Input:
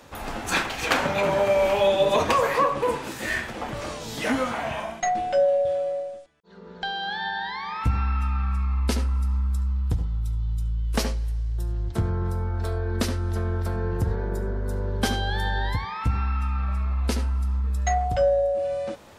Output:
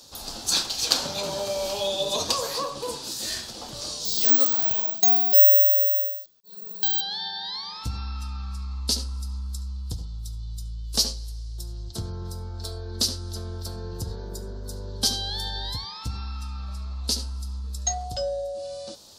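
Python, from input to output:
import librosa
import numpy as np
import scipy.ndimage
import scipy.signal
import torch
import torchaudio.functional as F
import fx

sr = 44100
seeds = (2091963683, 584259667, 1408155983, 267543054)

y = fx.resample_bad(x, sr, factor=2, down='filtered', up='zero_stuff', at=(4.05, 7.01))
y = fx.high_shelf_res(y, sr, hz=3100.0, db=13.5, q=3.0)
y = y * librosa.db_to_amplitude(-8.0)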